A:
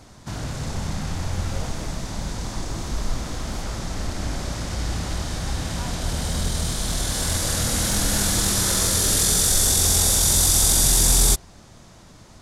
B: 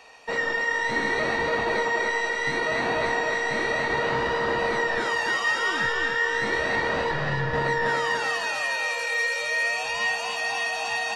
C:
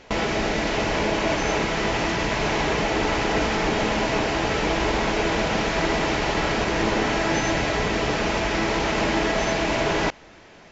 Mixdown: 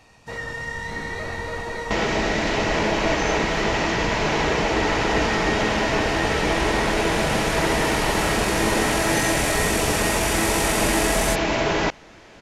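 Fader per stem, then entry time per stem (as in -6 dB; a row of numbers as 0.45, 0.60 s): -10.0, -6.0, +1.0 dB; 0.00, 0.00, 1.80 s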